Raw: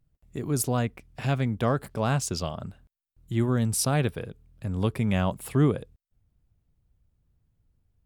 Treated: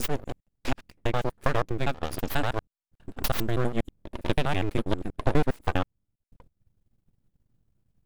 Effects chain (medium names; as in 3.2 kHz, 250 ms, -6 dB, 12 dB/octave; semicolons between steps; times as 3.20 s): slices played last to first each 81 ms, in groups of 8; full-wave rectifier; transient shaper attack +5 dB, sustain -9 dB